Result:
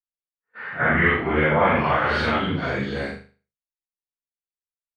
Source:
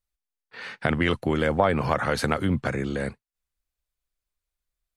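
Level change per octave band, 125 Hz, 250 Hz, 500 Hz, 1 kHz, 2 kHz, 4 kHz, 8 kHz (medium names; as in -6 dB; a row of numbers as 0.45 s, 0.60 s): +1.0 dB, +1.0 dB, +2.5 dB, +5.5 dB, +8.0 dB, +3.0 dB, under -10 dB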